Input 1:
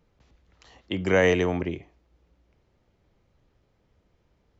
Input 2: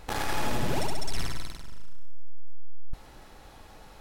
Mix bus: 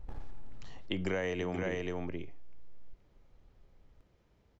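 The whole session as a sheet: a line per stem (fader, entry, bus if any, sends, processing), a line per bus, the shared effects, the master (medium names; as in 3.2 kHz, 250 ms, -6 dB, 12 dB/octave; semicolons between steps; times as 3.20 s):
-2.5 dB, 0.00 s, no send, echo send -7 dB, none
-18.0 dB, 0.00 s, no send, no echo send, tilt EQ -4.5 dB/octave; compression 2:1, threshold -18 dBFS, peak gain reduction 12 dB; auto duck -13 dB, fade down 0.85 s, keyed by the first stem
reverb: none
echo: delay 476 ms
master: compression 12:1, threshold -30 dBFS, peak gain reduction 12.5 dB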